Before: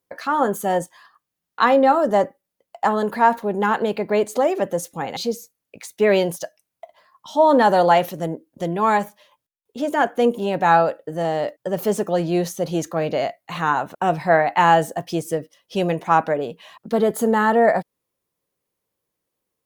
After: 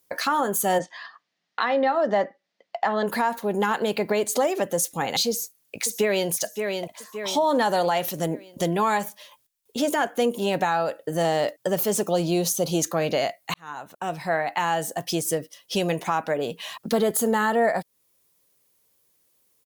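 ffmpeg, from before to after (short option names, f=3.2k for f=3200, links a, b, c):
-filter_complex "[0:a]asplit=3[a][b][c];[a]afade=t=out:st=0.78:d=0.02[d];[b]highpass=200,equalizer=f=200:t=q:w=4:g=4,equalizer=f=680:t=q:w=4:g=6,equalizer=f=1.9k:t=q:w=4:g=7,lowpass=f=4.8k:w=0.5412,lowpass=f=4.8k:w=1.3066,afade=t=in:st=0.78:d=0.02,afade=t=out:st=3.06:d=0.02[e];[c]afade=t=in:st=3.06:d=0.02[f];[d][e][f]amix=inputs=3:normalize=0,asplit=2[g][h];[h]afade=t=in:st=5.29:d=0.01,afade=t=out:st=6.3:d=0.01,aecho=0:1:570|1140|1710|2280:0.211349|0.095107|0.0427982|0.0192592[i];[g][i]amix=inputs=2:normalize=0,asettb=1/sr,asplit=3[j][k][l];[j]atrim=end=12.014[m];[k]atrim=start=12.01:end=12.82,asetpts=PTS-STARTPTS,afade=t=in:d=0.004:c=qsin,afade=t=out:st=0.806:d=0.004:c=qsin,equalizer=f=1.8k:w=3.2:g=-12[n];[l]atrim=start=12.816[o];[m][n]acrossfade=d=0.004:c1=hsin:c2=qsin[p];[p][o]acrossfade=d=0.004:c1=qsin:c2=hsin,asplit=2[q][r];[q]atrim=end=13.54,asetpts=PTS-STARTPTS,afade=t=out:st=13.536:d=0.004:c=hsin[s];[r]atrim=start=13.54,asetpts=PTS-STARTPTS,afade=t=in:d=3.5:c=qsin[t];[s][t]concat=n=2:v=0:a=1,highshelf=f=2.9k:g=12,alimiter=limit=-12dB:level=0:latency=1:release=399,acompressor=threshold=-32dB:ratio=1.5,volume=4dB"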